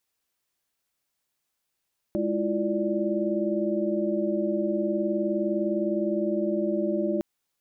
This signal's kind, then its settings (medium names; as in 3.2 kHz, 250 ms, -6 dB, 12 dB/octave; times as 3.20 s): chord G#3/E4/F4/D5 sine, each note -29 dBFS 5.06 s